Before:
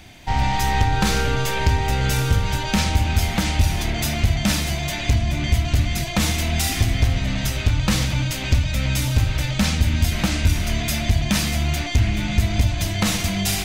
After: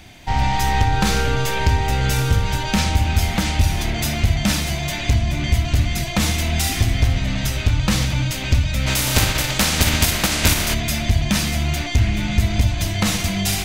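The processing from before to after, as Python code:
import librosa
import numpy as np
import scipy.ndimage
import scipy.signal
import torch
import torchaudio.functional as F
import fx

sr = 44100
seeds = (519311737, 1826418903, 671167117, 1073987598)

y = fx.spec_flatten(x, sr, power=0.56, at=(8.86, 10.73), fade=0.02)
y = fx.room_flutter(y, sr, wall_m=10.7, rt60_s=0.2)
y = F.gain(torch.from_numpy(y), 1.0).numpy()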